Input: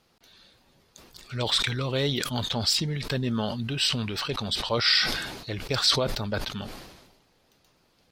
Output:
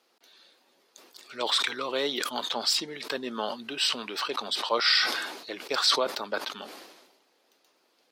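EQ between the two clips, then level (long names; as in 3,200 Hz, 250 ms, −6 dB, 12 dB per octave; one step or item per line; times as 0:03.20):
high-pass filter 290 Hz 24 dB per octave
dynamic equaliser 1,100 Hz, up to +6 dB, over −44 dBFS, Q 1.6
−1.5 dB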